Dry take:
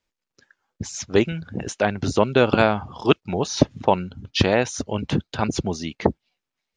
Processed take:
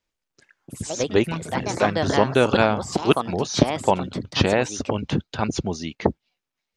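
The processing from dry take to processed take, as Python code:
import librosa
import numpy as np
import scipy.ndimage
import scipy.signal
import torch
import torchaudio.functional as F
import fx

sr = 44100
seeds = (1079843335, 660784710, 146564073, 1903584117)

y = fx.echo_pitch(x, sr, ms=88, semitones=4, count=2, db_per_echo=-6.0)
y = F.gain(torch.from_numpy(y), -1.0).numpy()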